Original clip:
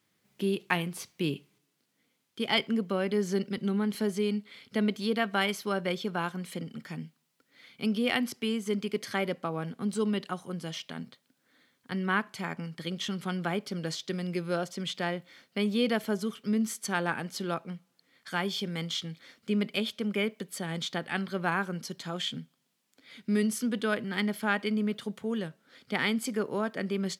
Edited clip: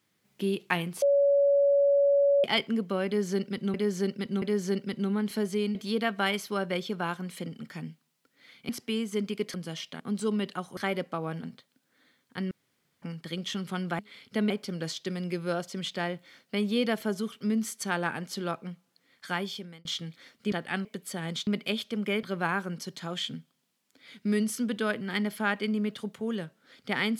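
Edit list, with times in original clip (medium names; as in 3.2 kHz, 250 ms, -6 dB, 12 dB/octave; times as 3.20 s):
1.02–2.44 s: bleep 564 Hz -19 dBFS
3.06–3.74 s: loop, 3 plays
4.39–4.90 s: move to 13.53 s
7.84–8.23 s: delete
9.08–9.74 s: swap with 10.51–10.97 s
12.05–12.56 s: room tone
18.36–18.88 s: fade out
19.55–20.31 s: swap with 20.93–21.26 s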